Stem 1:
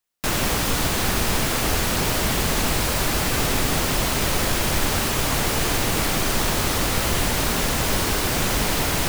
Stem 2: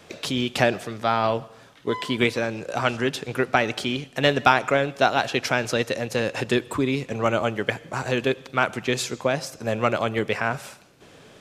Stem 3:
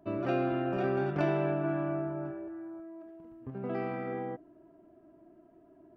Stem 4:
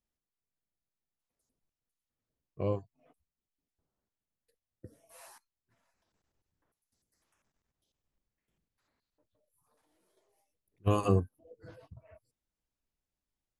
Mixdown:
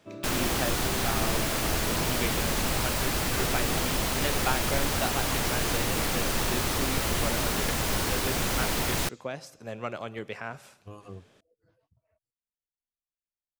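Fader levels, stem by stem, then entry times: −6.0, −12.5, −8.0, −17.5 decibels; 0.00, 0.00, 0.00, 0.00 seconds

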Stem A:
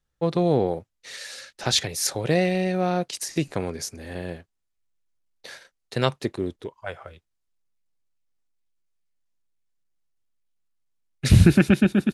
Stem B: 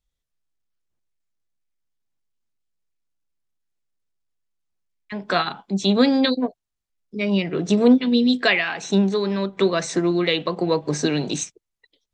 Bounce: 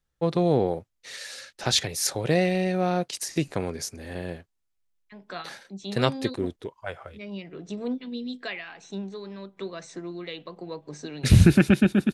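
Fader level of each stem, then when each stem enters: −1.0, −16.0 decibels; 0.00, 0.00 seconds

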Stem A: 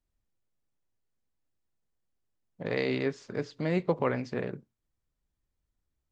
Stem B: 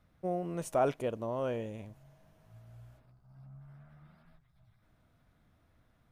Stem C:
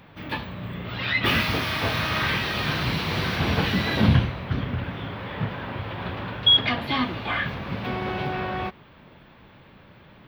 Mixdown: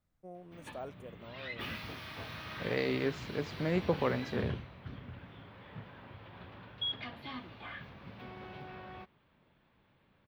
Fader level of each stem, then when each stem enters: −3.0, −15.0, −19.0 decibels; 0.00, 0.00, 0.35 seconds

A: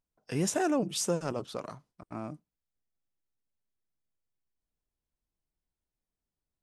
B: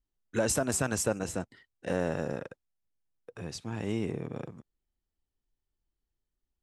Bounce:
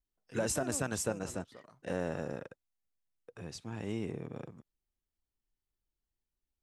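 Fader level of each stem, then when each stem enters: −16.5, −5.0 decibels; 0.00, 0.00 seconds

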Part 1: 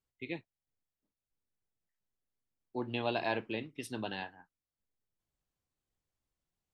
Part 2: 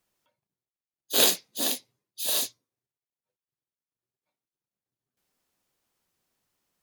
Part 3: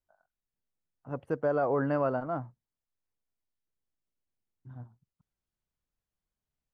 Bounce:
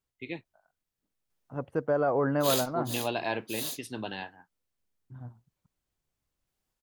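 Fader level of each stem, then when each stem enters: +2.0, −9.5, +1.5 decibels; 0.00, 1.30, 0.45 seconds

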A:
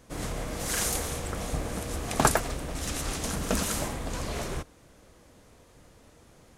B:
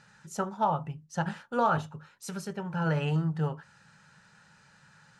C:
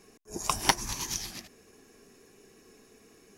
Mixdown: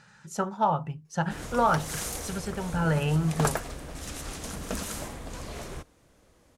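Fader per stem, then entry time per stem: −5.5, +2.5, −16.5 decibels; 1.20, 0.00, 1.05 seconds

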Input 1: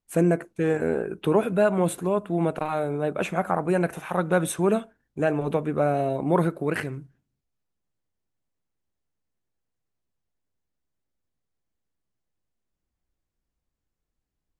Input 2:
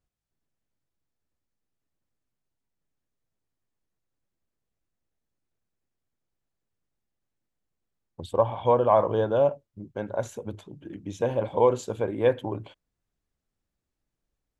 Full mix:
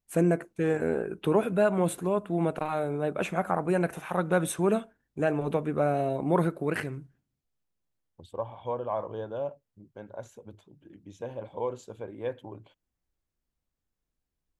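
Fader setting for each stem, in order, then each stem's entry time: −3.0, −11.5 decibels; 0.00, 0.00 seconds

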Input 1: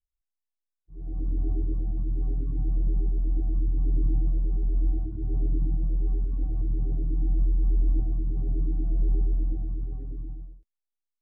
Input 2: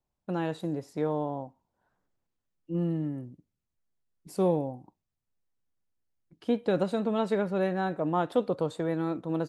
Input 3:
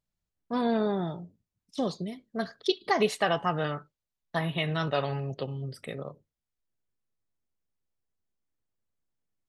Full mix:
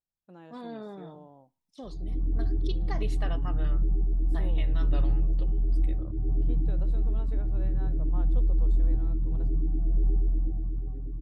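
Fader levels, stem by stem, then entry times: −0.5, −19.0, −13.5 decibels; 0.95, 0.00, 0.00 seconds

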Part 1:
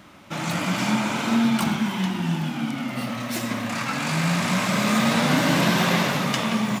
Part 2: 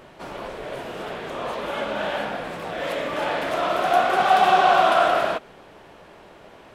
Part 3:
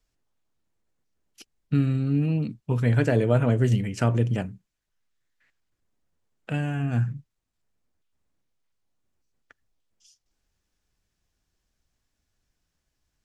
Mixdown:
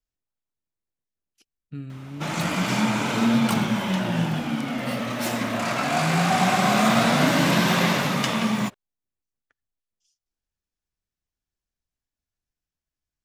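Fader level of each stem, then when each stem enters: 0.0, −7.5, −13.5 decibels; 1.90, 2.00, 0.00 seconds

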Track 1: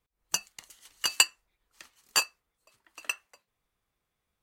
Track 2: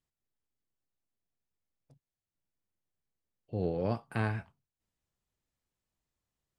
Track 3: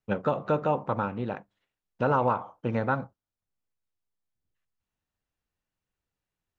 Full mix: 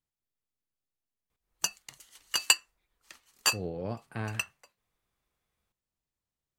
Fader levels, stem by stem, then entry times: −1.0 dB, −4.0 dB, muted; 1.30 s, 0.00 s, muted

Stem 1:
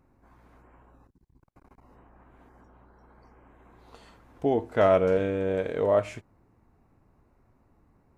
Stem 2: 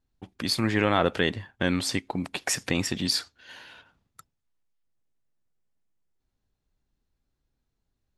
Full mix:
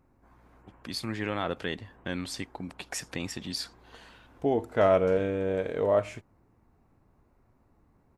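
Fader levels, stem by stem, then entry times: −1.5, −8.5 decibels; 0.00, 0.45 seconds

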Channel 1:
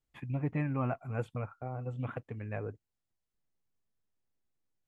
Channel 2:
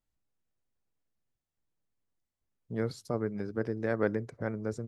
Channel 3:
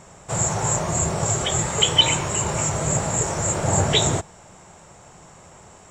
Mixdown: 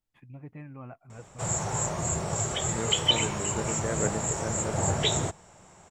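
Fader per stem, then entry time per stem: −11.0, −2.0, −7.0 decibels; 0.00, 0.00, 1.10 seconds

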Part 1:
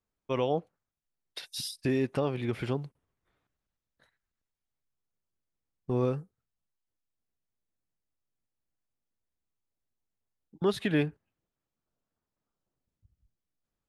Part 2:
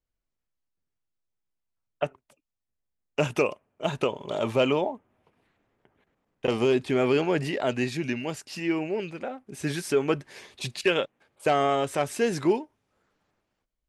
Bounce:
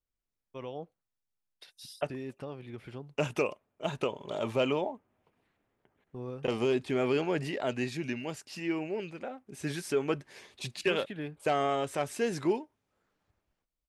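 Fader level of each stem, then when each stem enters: −12.0, −5.5 decibels; 0.25, 0.00 seconds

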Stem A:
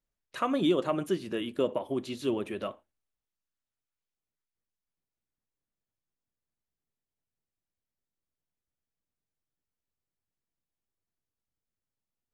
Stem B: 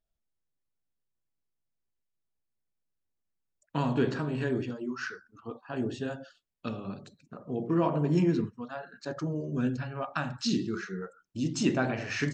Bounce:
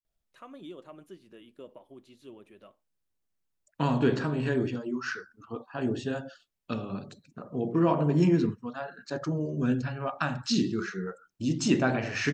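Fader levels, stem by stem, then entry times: −18.5, +2.5 decibels; 0.00, 0.05 seconds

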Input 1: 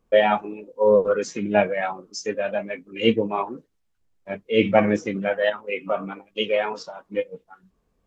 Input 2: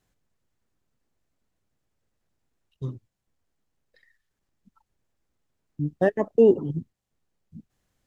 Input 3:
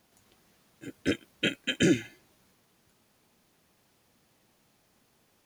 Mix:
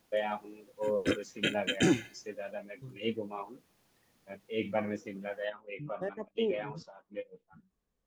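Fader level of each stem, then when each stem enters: −15.0, −15.5, −2.5 decibels; 0.00, 0.00, 0.00 seconds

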